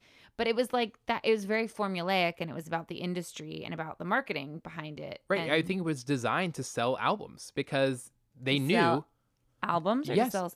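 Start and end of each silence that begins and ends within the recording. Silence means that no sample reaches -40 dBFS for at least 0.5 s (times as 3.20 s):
9.01–9.63 s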